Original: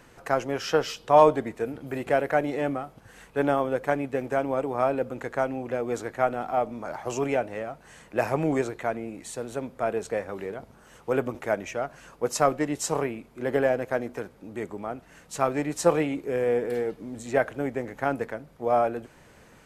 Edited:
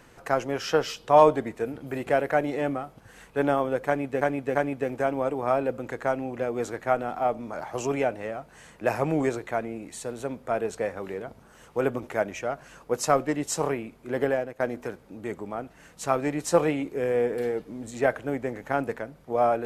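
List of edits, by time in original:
0:03.87–0:04.21: repeat, 3 plays
0:13.52–0:13.92: fade out, to −13 dB

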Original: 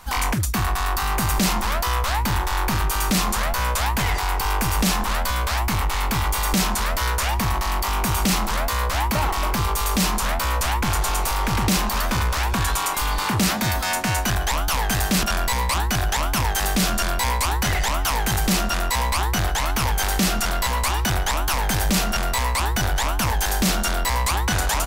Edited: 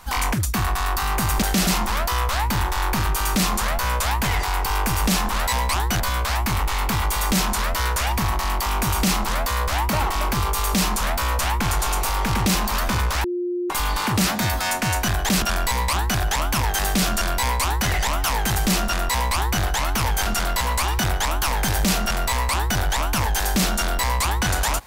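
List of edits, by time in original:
0:12.46–0:12.92: beep over 354 Hz −22 dBFS
0:14.51–0:15.10: remove
0:18.90–0:19.43: duplicate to 0:05.22
0:20.07–0:20.32: move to 0:01.42

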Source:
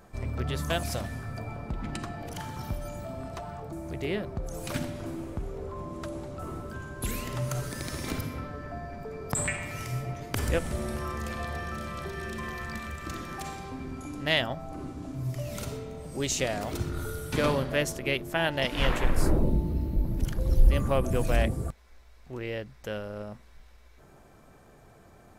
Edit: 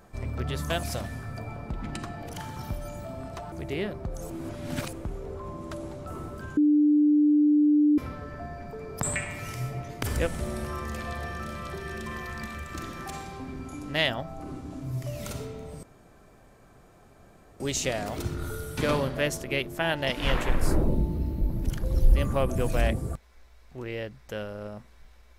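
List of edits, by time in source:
0:03.52–0:03.84: remove
0:04.62–0:05.25: reverse
0:06.89–0:08.30: beep over 297 Hz −17 dBFS
0:16.15: splice in room tone 1.77 s

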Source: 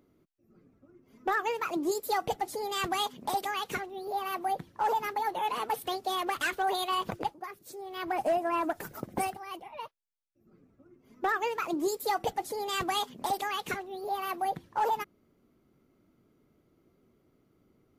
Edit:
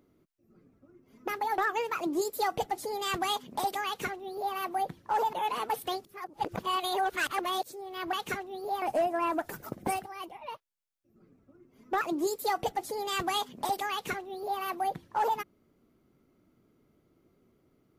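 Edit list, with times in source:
0:03.56–0:04.25: duplicate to 0:08.13
0:05.03–0:05.33: move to 0:01.28
0:06.05–0:07.63: reverse
0:11.32–0:11.62: remove

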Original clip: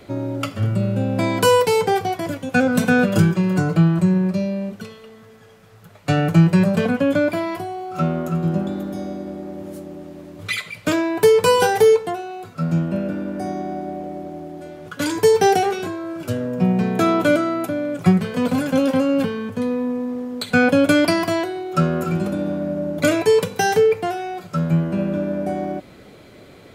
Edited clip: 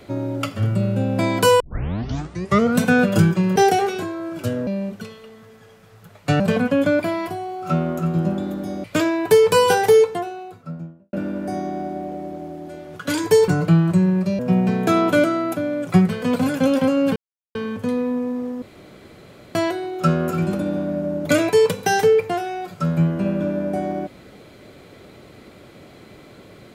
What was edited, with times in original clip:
0:01.60: tape start 1.17 s
0:03.56–0:04.47: swap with 0:15.40–0:16.51
0:06.20–0:06.69: remove
0:09.13–0:10.76: remove
0:12.02–0:13.05: fade out and dull
0:19.28: splice in silence 0.39 s
0:20.35–0:21.28: fill with room tone

